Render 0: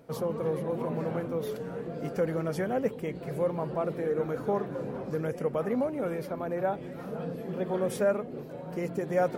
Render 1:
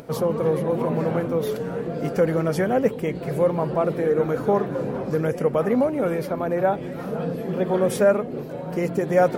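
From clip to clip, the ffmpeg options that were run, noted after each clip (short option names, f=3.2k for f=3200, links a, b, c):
-af "acompressor=mode=upward:threshold=-46dB:ratio=2.5,volume=8.5dB"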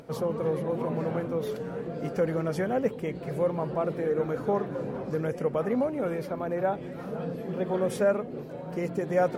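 -af "highshelf=f=12k:g=-8.5,volume=-6.5dB"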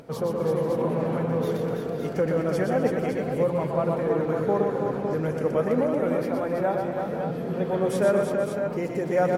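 -af "aecho=1:1:121|218|255|329|486|560:0.562|0.106|0.2|0.531|0.2|0.447,volume=1.5dB"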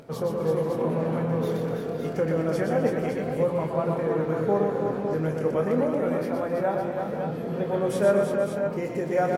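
-filter_complex "[0:a]asplit=2[a][b];[b]adelay=25,volume=-7.5dB[c];[a][c]amix=inputs=2:normalize=0,volume=-1.5dB"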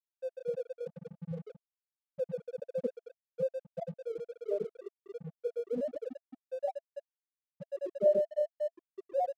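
-af "afftfilt=real='re*gte(hypot(re,im),0.501)':imag='im*gte(hypot(re,im),0.501)':win_size=1024:overlap=0.75,aeval=exprs='sgn(val(0))*max(abs(val(0))-0.00376,0)':c=same,equalizer=f=670:t=o:w=0.24:g=13,volume=-8dB"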